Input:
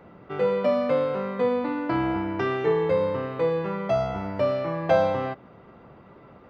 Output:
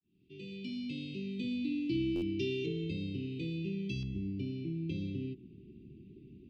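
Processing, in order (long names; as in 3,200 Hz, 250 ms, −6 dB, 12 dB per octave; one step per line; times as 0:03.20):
fade in at the beginning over 1.68 s
Chebyshev band-stop filter 380–2,500 Hz, order 5
high-shelf EQ 2,300 Hz +10.5 dB, from 0:02.66 +4.5 dB, from 0:04.03 −9.5 dB
downward compressor 1.5 to 1, threshold −39 dBFS, peak gain reduction 5.5 dB
high-frequency loss of the air 63 metres
buffer that repeats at 0:02.15, samples 512, times 5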